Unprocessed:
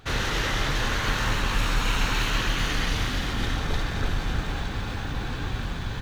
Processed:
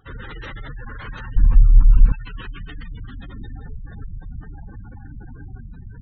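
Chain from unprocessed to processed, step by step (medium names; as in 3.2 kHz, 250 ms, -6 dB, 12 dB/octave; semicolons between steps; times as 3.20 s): spectral gate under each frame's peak -15 dB strong; 1.36–2.12 s: tilt EQ -4.5 dB/octave; trim -6 dB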